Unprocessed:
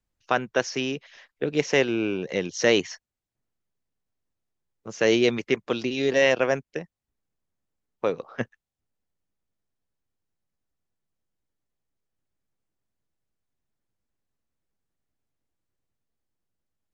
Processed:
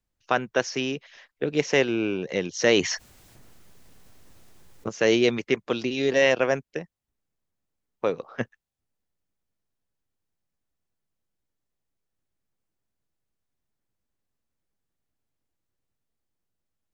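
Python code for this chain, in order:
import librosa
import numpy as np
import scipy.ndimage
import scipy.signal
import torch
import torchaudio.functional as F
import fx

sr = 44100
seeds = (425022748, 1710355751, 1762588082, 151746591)

y = fx.env_flatten(x, sr, amount_pct=50, at=(2.72, 4.89))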